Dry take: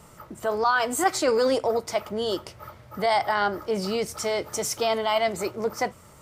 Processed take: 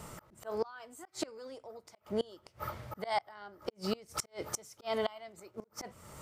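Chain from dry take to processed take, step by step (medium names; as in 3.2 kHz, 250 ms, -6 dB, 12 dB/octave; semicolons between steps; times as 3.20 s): slow attack 416 ms; inverted gate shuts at -23 dBFS, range -27 dB; trim +2.5 dB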